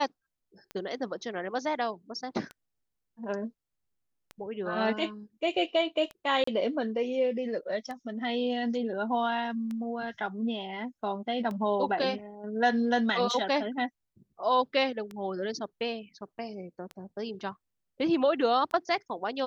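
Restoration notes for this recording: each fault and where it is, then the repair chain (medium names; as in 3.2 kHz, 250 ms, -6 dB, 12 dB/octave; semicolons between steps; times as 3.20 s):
tick 33 1/3 rpm -25 dBFS
6.44–6.47 s: dropout 34 ms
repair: de-click; interpolate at 6.44 s, 34 ms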